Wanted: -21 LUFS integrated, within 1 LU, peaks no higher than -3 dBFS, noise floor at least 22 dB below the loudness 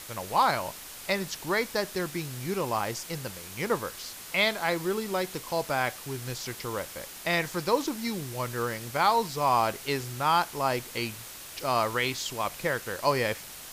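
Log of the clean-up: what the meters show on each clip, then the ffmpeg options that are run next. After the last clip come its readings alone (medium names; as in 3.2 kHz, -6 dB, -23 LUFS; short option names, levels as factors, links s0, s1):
noise floor -44 dBFS; noise floor target -51 dBFS; loudness -29.0 LUFS; peak level -10.0 dBFS; loudness target -21.0 LUFS
-> -af "afftdn=nr=7:nf=-44"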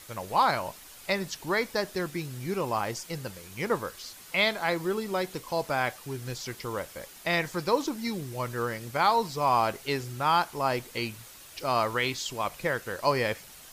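noise floor -49 dBFS; noise floor target -52 dBFS
-> -af "afftdn=nr=6:nf=-49"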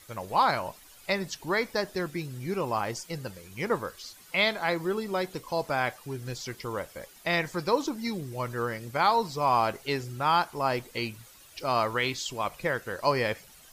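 noise floor -53 dBFS; loudness -29.5 LUFS; peak level -10.5 dBFS; loudness target -21.0 LUFS
-> -af "volume=2.66,alimiter=limit=0.708:level=0:latency=1"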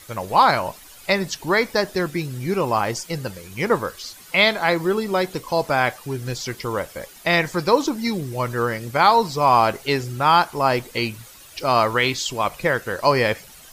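loudness -21.0 LUFS; peak level -3.0 dBFS; noise floor -45 dBFS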